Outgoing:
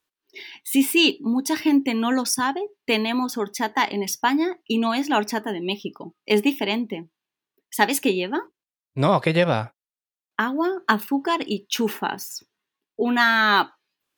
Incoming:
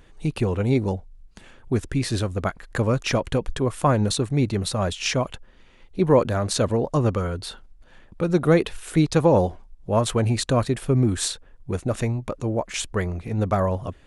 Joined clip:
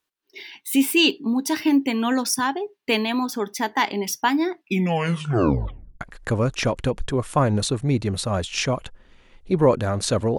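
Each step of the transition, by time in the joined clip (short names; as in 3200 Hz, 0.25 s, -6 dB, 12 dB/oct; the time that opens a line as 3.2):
outgoing
4.53 tape stop 1.48 s
6.01 switch to incoming from 2.49 s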